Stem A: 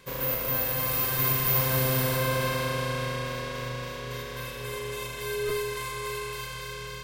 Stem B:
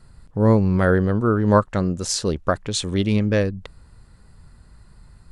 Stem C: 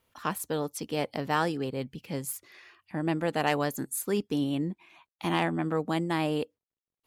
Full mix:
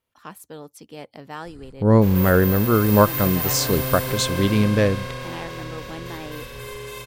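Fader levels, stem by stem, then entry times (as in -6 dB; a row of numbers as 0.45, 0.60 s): -0.5, +1.0, -8.0 dB; 1.95, 1.45, 0.00 s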